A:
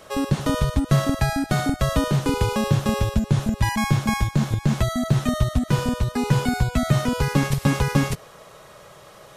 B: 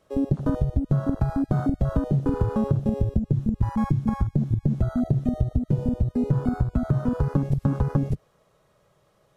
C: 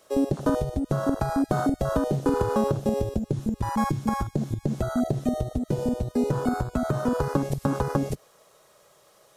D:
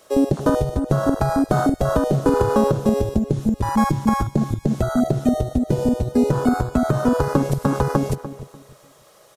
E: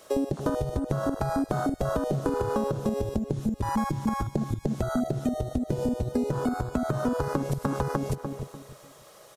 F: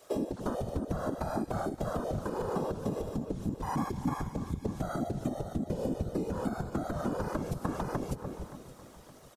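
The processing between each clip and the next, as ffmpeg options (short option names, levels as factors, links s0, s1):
-af "afwtdn=0.0708,lowshelf=f=470:g=9.5,acompressor=threshold=0.224:ratio=6,volume=0.562"
-af "bass=f=250:g=-14,treble=f=4000:g=9,volume=2.11"
-filter_complex "[0:a]asplit=2[s0][s1];[s1]adelay=295,lowpass=f=1600:p=1,volume=0.237,asplit=2[s2][s3];[s3]adelay=295,lowpass=f=1600:p=1,volume=0.26,asplit=2[s4][s5];[s5]adelay=295,lowpass=f=1600:p=1,volume=0.26[s6];[s0][s2][s4][s6]amix=inputs=4:normalize=0,volume=2"
-af "acompressor=threshold=0.0631:ratio=6"
-af "afftfilt=real='hypot(re,im)*cos(2*PI*random(0))':imag='hypot(re,im)*sin(2*PI*random(1))':win_size=512:overlap=0.75,aecho=1:1:571|1142|1713|2284:0.158|0.0713|0.0321|0.0144"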